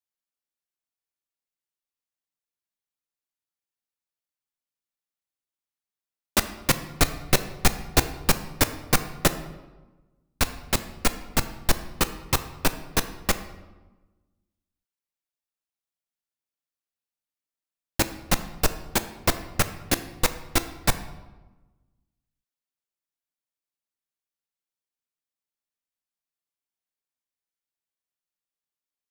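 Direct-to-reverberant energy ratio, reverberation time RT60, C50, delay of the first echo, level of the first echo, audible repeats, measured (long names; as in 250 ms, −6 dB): 10.0 dB, 1.2 s, 12.5 dB, no echo audible, no echo audible, no echo audible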